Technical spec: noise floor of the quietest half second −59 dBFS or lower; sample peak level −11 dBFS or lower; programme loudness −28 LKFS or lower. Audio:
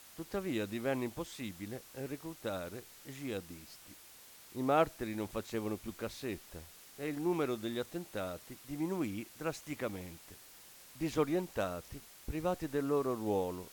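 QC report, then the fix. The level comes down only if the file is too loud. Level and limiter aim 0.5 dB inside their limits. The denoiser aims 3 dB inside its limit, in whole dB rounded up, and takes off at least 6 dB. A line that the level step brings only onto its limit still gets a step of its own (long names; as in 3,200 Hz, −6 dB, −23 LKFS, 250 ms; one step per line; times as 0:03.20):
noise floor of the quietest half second −56 dBFS: out of spec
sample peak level −18.0 dBFS: in spec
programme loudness −37.5 LKFS: in spec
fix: broadband denoise 6 dB, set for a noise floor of −56 dBFS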